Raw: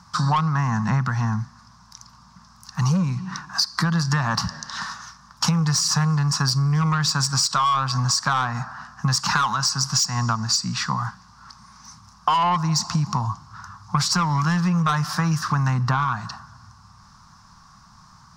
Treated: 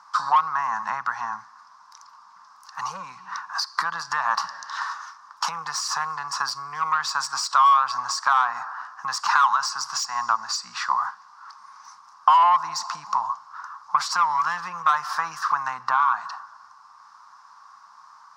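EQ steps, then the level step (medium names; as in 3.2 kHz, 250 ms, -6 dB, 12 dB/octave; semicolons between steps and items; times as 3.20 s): resonant high-pass 1 kHz, resonance Q 1.9; treble shelf 2.5 kHz -8.5 dB; 0.0 dB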